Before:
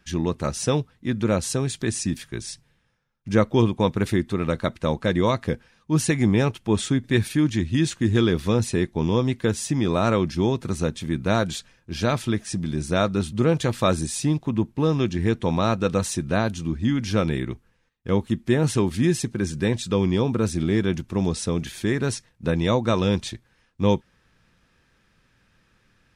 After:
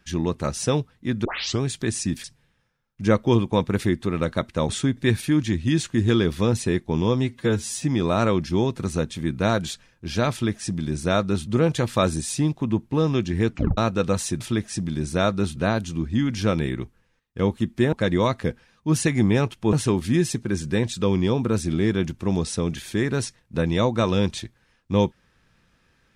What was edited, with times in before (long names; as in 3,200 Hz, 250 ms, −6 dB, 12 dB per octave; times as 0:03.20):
0:01.25: tape start 0.36 s
0:02.24–0:02.51: remove
0:04.96–0:06.76: move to 0:18.62
0:09.29–0:09.72: time-stretch 1.5×
0:12.17–0:13.33: duplicate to 0:16.26
0:15.36: tape stop 0.27 s